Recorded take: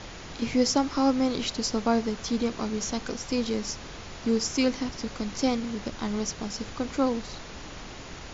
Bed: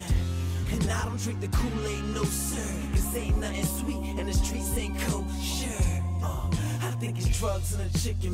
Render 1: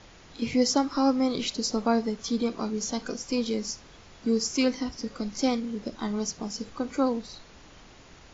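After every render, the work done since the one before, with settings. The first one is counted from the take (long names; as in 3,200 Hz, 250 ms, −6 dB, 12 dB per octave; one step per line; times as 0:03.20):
noise reduction from a noise print 10 dB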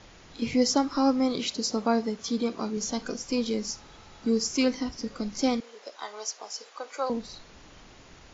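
0:01.33–0:02.77: high-pass filter 120 Hz 6 dB per octave
0:03.70–0:04.30: hollow resonant body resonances 850/1,300/3,900 Hz, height 9 dB
0:05.60–0:07.10: high-pass filter 530 Hz 24 dB per octave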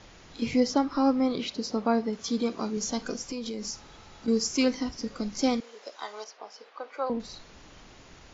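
0:00.60–0:02.13: high-frequency loss of the air 140 metres
0:03.28–0:04.28: downward compressor 12 to 1, threshold −30 dBFS
0:06.24–0:07.20: high-frequency loss of the air 250 metres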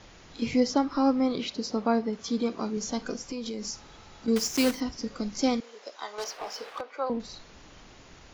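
0:01.98–0:03.39: high-shelf EQ 4,800 Hz −5 dB
0:04.36–0:04.81: one scale factor per block 3 bits
0:06.18–0:06.81: leveller curve on the samples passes 3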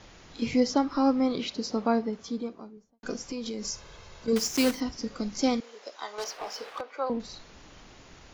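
0:01.84–0:03.03: fade out and dull
0:03.64–0:04.33: comb filter 1.9 ms, depth 60%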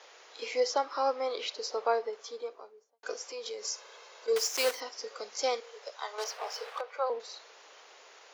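Chebyshev high-pass filter 440 Hz, order 4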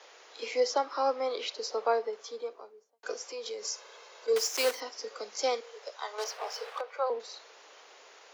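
Butterworth high-pass 170 Hz 96 dB per octave
low-shelf EQ 240 Hz +6 dB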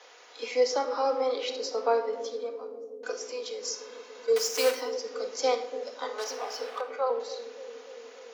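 bucket-brigade delay 288 ms, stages 1,024, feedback 82%, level −10 dB
rectangular room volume 2,400 cubic metres, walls furnished, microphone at 1.9 metres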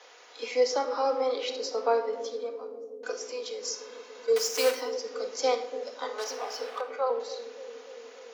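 no processing that can be heard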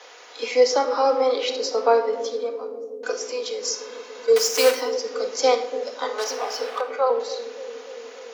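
level +7.5 dB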